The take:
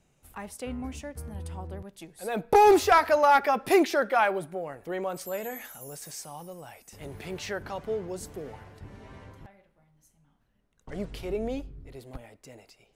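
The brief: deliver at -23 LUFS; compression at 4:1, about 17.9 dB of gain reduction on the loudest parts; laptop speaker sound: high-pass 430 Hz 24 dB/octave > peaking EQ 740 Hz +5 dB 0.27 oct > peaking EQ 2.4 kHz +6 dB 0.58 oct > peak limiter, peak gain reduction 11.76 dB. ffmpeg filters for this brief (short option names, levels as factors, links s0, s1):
-af "acompressor=threshold=0.0141:ratio=4,highpass=f=430:w=0.5412,highpass=f=430:w=1.3066,equalizer=f=740:t=o:w=0.27:g=5,equalizer=f=2400:t=o:w=0.58:g=6,volume=11.9,alimiter=limit=0.251:level=0:latency=1"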